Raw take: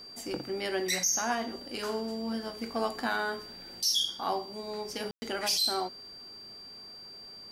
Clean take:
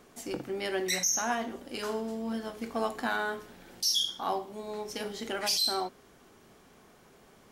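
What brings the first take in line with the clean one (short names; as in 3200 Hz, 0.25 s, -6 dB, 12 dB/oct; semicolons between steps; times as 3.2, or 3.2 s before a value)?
notch 4700 Hz, Q 30; room tone fill 5.11–5.22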